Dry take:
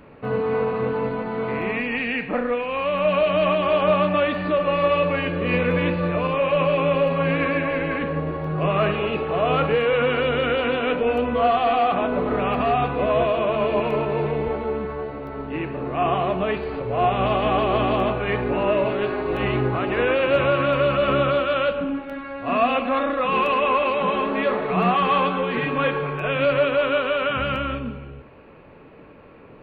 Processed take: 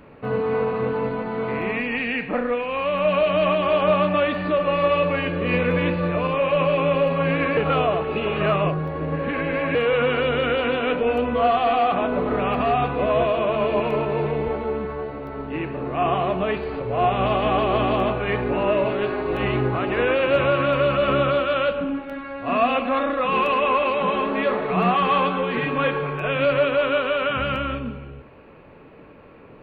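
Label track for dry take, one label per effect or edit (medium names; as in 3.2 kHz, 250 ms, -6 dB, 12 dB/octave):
7.570000	9.750000	reverse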